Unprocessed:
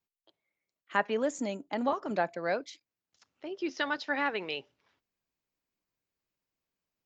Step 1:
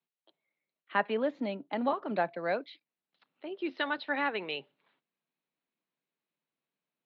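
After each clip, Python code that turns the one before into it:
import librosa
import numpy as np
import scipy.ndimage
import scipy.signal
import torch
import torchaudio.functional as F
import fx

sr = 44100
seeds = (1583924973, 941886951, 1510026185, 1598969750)

y = scipy.signal.sosfilt(scipy.signal.cheby1(5, 1.0, [140.0, 4100.0], 'bandpass', fs=sr, output='sos'), x)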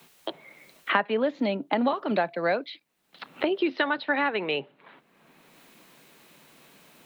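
y = fx.band_squash(x, sr, depth_pct=100)
y = y * librosa.db_to_amplitude(6.0)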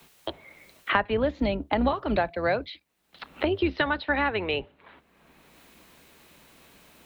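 y = fx.octave_divider(x, sr, octaves=2, level_db=-5.0)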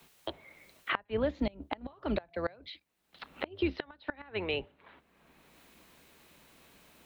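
y = fx.gate_flip(x, sr, shuts_db=-14.0, range_db=-25)
y = y * librosa.db_to_amplitude(-5.0)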